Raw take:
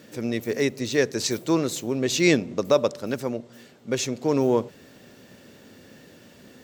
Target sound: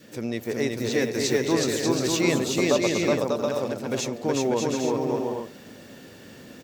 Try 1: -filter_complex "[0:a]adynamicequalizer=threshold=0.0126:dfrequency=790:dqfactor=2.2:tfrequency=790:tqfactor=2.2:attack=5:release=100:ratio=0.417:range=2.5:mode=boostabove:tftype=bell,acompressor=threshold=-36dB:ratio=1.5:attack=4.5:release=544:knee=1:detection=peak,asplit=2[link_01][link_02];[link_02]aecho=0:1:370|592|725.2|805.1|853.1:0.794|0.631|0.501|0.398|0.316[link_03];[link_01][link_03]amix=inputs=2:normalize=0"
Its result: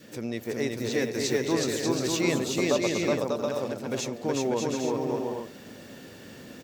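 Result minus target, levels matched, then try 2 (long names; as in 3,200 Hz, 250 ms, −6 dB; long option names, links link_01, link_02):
downward compressor: peak gain reduction +3 dB
-filter_complex "[0:a]adynamicequalizer=threshold=0.0126:dfrequency=790:dqfactor=2.2:tfrequency=790:tqfactor=2.2:attack=5:release=100:ratio=0.417:range=2.5:mode=boostabove:tftype=bell,acompressor=threshold=-26.5dB:ratio=1.5:attack=4.5:release=544:knee=1:detection=peak,asplit=2[link_01][link_02];[link_02]aecho=0:1:370|592|725.2|805.1|853.1:0.794|0.631|0.501|0.398|0.316[link_03];[link_01][link_03]amix=inputs=2:normalize=0"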